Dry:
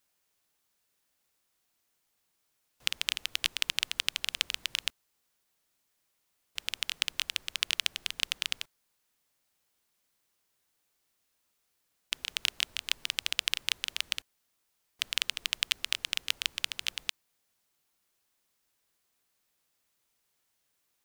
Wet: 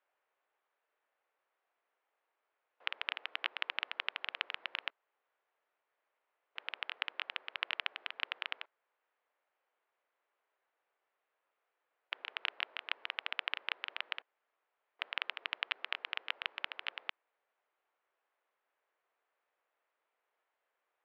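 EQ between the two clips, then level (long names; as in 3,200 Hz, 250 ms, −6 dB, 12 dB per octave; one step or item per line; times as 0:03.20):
high-pass filter 450 Hz 24 dB per octave
low-pass filter 2,100 Hz 12 dB per octave
high-frequency loss of the air 340 metres
+5.0 dB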